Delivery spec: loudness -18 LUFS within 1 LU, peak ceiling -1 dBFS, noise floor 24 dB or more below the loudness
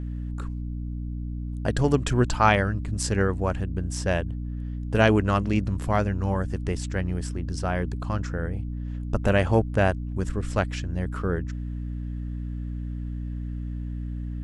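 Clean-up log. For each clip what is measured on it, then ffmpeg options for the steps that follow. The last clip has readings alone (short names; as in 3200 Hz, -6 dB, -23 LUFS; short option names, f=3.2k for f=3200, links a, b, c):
hum 60 Hz; harmonics up to 300 Hz; hum level -29 dBFS; loudness -27.0 LUFS; peak -5.5 dBFS; loudness target -18.0 LUFS
-> -af "bandreject=f=60:t=h:w=6,bandreject=f=120:t=h:w=6,bandreject=f=180:t=h:w=6,bandreject=f=240:t=h:w=6,bandreject=f=300:t=h:w=6"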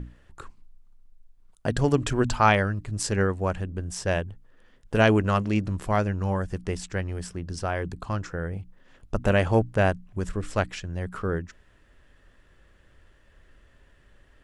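hum none; loudness -26.5 LUFS; peak -5.5 dBFS; loudness target -18.0 LUFS
-> -af "volume=8.5dB,alimiter=limit=-1dB:level=0:latency=1"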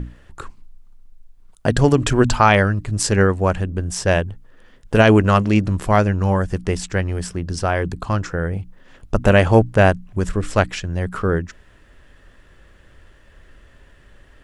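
loudness -18.5 LUFS; peak -1.0 dBFS; noise floor -50 dBFS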